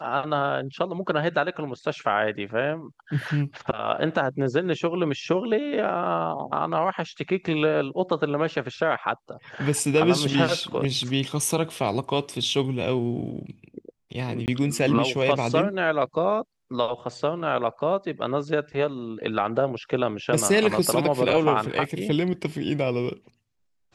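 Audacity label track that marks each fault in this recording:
14.460000	14.480000	drop-out 19 ms

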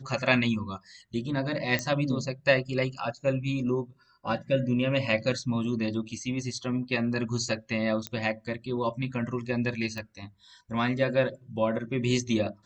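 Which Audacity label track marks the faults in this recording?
1.790000	1.790000	click −14 dBFS
8.070000	8.070000	click −16 dBFS
9.980000	9.980000	click −22 dBFS

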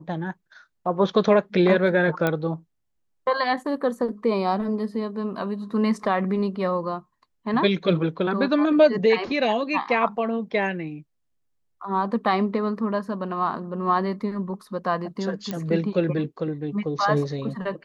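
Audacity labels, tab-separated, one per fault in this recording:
2.270000	2.270000	click −10 dBFS
15.510000	15.510000	click −15 dBFS

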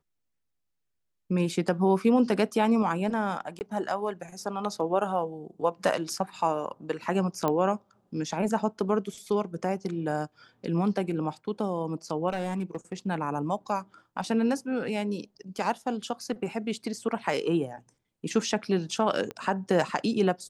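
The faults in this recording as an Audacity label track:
3.590000	3.610000	drop-out 19 ms
7.480000	7.480000	click −14 dBFS
12.290000	12.930000	clipping −25.5 dBFS
19.310000	19.310000	click −22 dBFS

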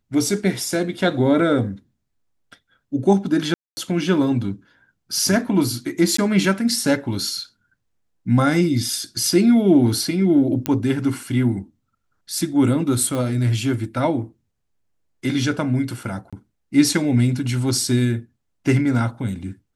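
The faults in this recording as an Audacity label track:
3.540000	3.770000	drop-out 230 ms
6.170000	6.180000	drop-out 14 ms
10.660000	10.660000	click −6 dBFS
13.150000	13.150000	click −14 dBFS
16.300000	16.330000	drop-out 26 ms

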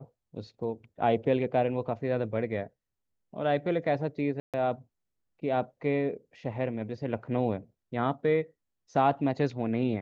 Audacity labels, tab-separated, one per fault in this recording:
4.400000	4.540000	drop-out 137 ms

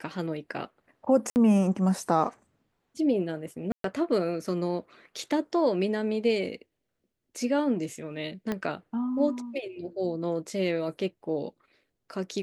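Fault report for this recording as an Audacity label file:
1.300000	1.360000	drop-out 59 ms
3.720000	3.840000	drop-out 123 ms
8.520000	8.520000	click −17 dBFS

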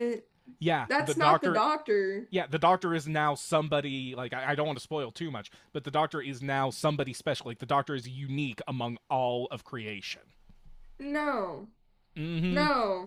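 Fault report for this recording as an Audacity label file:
8.040000	8.040000	drop-out 3.2 ms

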